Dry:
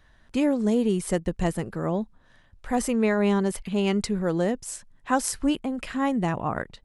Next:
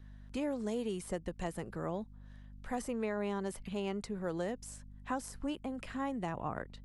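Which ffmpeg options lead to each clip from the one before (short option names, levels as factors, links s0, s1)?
-filter_complex "[0:a]aeval=exprs='val(0)+0.00708*(sin(2*PI*50*n/s)+sin(2*PI*2*50*n/s)/2+sin(2*PI*3*50*n/s)/3+sin(2*PI*4*50*n/s)/4+sin(2*PI*5*50*n/s)/5)':c=same,acrossover=split=430|1300[s0][s1][s2];[s0]acompressor=threshold=0.0251:ratio=4[s3];[s1]acompressor=threshold=0.0355:ratio=4[s4];[s2]acompressor=threshold=0.01:ratio=4[s5];[s3][s4][s5]amix=inputs=3:normalize=0,volume=0.422"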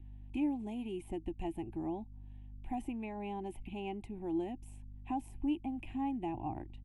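-af "firequalizer=gain_entry='entry(120,0);entry(170,-11);entry(330,6);entry(480,-25);entry(790,1);entry(1300,-30);entry(2500,-2);entry(4600,-27);entry(10000,-14)':delay=0.05:min_phase=1,volume=1.41"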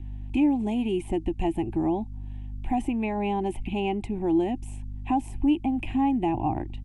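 -filter_complex "[0:a]lowpass=f=9900:w=0.5412,lowpass=f=9900:w=1.3066,asplit=2[s0][s1];[s1]alimiter=level_in=2.66:limit=0.0631:level=0:latency=1:release=156,volume=0.376,volume=0.944[s2];[s0][s2]amix=inputs=2:normalize=0,volume=2.51"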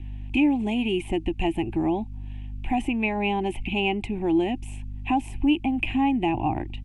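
-af "equalizer=f=2600:t=o:w=0.95:g=10,volume=1.12"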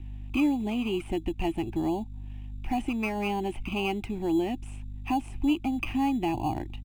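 -filter_complex "[0:a]aresample=22050,aresample=44100,asplit=2[s0][s1];[s1]acrusher=samples=12:mix=1:aa=0.000001,volume=0.282[s2];[s0][s2]amix=inputs=2:normalize=0,volume=0.501"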